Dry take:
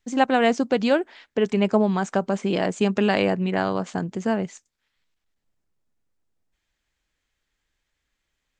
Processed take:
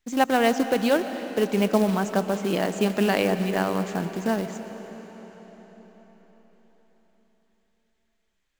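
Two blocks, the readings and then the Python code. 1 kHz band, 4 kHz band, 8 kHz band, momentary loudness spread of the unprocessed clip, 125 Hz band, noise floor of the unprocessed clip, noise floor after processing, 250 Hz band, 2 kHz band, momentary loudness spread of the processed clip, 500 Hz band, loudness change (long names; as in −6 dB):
−1.0 dB, −0.5 dB, +3.5 dB, 7 LU, −1.5 dB, −79 dBFS, −73 dBFS, −1.5 dB, −1.0 dB, 15 LU, −1.0 dB, −1.0 dB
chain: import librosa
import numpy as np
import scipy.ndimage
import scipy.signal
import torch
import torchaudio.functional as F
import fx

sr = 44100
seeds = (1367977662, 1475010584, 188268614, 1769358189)

y = fx.peak_eq(x, sr, hz=110.0, db=-13.5, octaves=0.22)
y = fx.quant_float(y, sr, bits=2)
y = fx.rev_freeverb(y, sr, rt60_s=5.0, hf_ratio=0.9, predelay_ms=75, drr_db=9.0)
y = y * 10.0 ** (-1.5 / 20.0)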